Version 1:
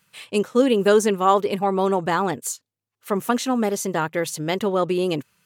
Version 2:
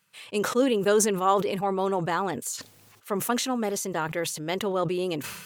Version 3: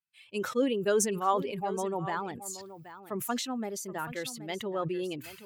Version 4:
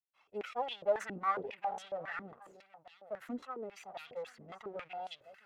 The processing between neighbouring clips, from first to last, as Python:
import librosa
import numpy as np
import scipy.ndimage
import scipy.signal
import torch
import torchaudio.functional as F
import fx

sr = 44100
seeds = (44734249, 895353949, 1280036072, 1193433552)

y1 = fx.low_shelf(x, sr, hz=210.0, db=-5.0)
y1 = fx.sustainer(y1, sr, db_per_s=54.0)
y1 = y1 * 10.0 ** (-5.0 / 20.0)
y2 = fx.bin_expand(y1, sr, power=1.5)
y2 = y2 + 10.0 ** (-14.0 / 20.0) * np.pad(y2, (int(776 * sr / 1000.0), 0))[:len(y2)]
y2 = y2 * 10.0 ** (-3.5 / 20.0)
y3 = fx.lower_of_two(y2, sr, delay_ms=1.5)
y3 = fx.filter_held_bandpass(y3, sr, hz=7.3, low_hz=280.0, high_hz=3400.0)
y3 = y3 * 10.0 ** (2.5 / 20.0)